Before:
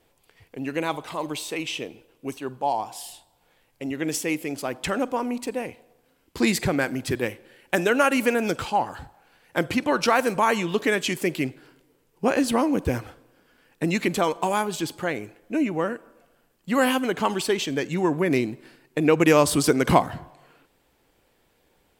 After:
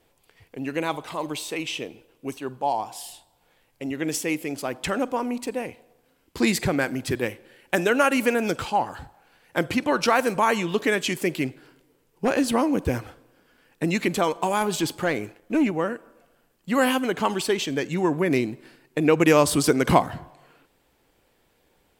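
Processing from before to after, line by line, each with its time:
11.4–12.51 hard clip -14 dBFS
14.61–15.71 sample leveller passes 1

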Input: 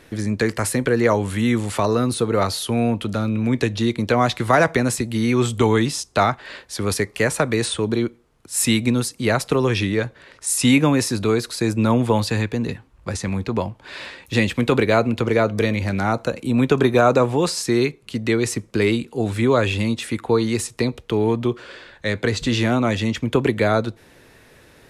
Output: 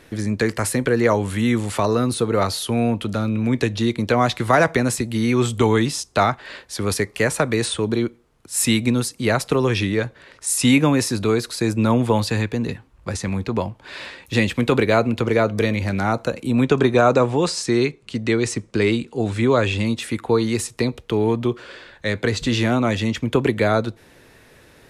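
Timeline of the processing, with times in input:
16.63–19.86 LPF 9200 Hz 24 dB/oct

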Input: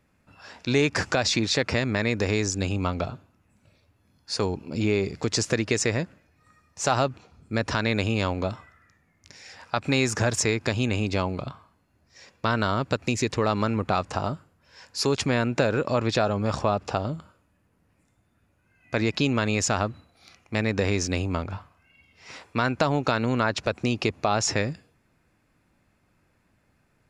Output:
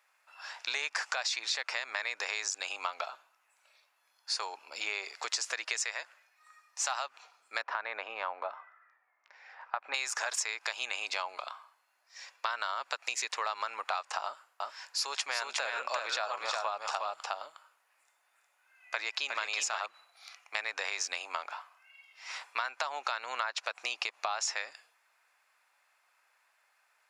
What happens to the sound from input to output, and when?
5.79–7.11 low shelf 370 Hz -9 dB
7.62–9.94 LPF 1400 Hz
14.24–19.86 echo 0.361 s -4 dB
whole clip: HPF 800 Hz 24 dB/oct; compressor, threshold -32 dBFS; gain +2 dB

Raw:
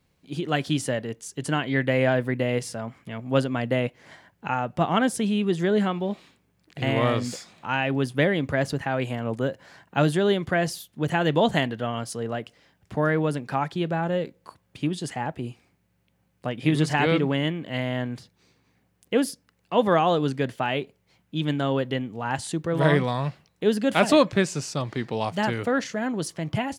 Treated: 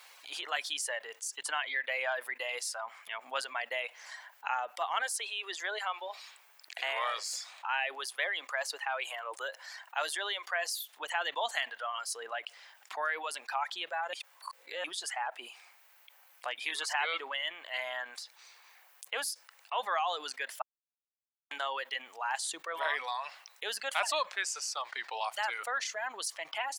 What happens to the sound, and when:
5.02–11 steep high-pass 310 Hz
14.13–14.84 reverse
20.62–21.51 mute
whole clip: reverb removal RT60 2 s; HPF 800 Hz 24 dB/oct; fast leveller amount 50%; gain -7.5 dB

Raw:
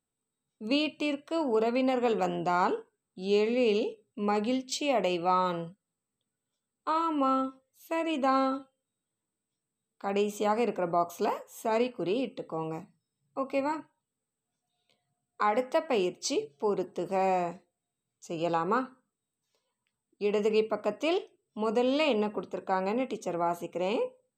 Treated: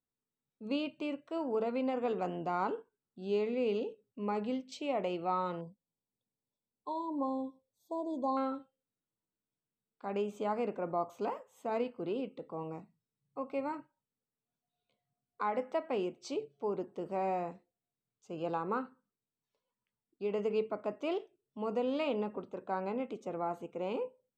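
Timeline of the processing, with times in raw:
5.61–8.37 brick-wall FIR band-stop 1100–3300 Hz
whole clip: LPF 1900 Hz 6 dB/oct; gain -6 dB

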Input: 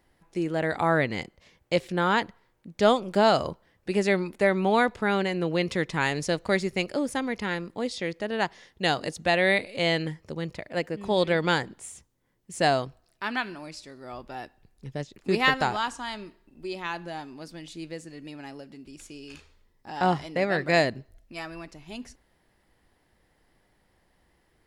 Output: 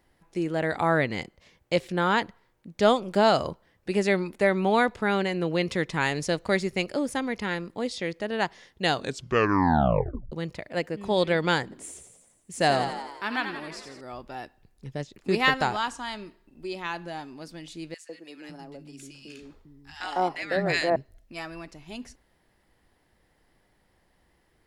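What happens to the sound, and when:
8.91 tape stop 1.41 s
11.63–14.01 frequency-shifting echo 86 ms, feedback 62%, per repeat +51 Hz, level -8 dB
17.94–20.96 three bands offset in time highs, mids, lows 0.15/0.55 s, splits 240/1300 Hz

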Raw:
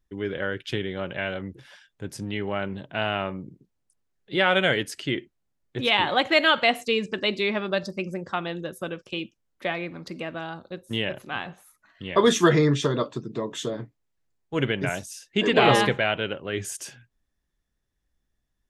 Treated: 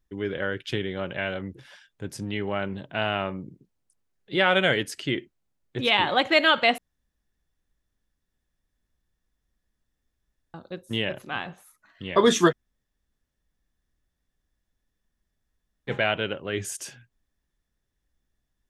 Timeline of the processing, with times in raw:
6.78–10.54 room tone
12.5–15.9 room tone, crossfade 0.06 s

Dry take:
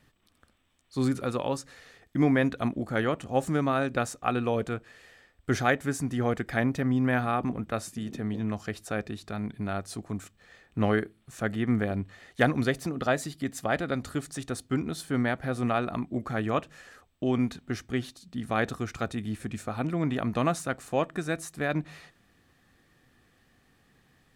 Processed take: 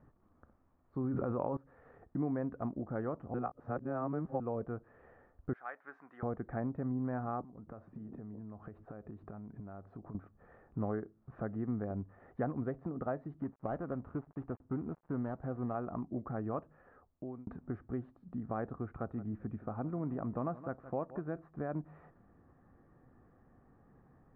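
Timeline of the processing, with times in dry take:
1.04–1.57 fast leveller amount 100%
3.34–4.4 reverse
5.53–6.23 HPF 1500 Hz
7.41–10.15 compressor 16:1, threshold -43 dBFS
13.42–15.75 switching dead time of 0.19 ms
16.56–17.47 fade out
18.91–21.44 echo 0.17 s -17 dB
whole clip: LPF 1200 Hz 24 dB/oct; compressor 2:1, threshold -45 dBFS; gain +2 dB

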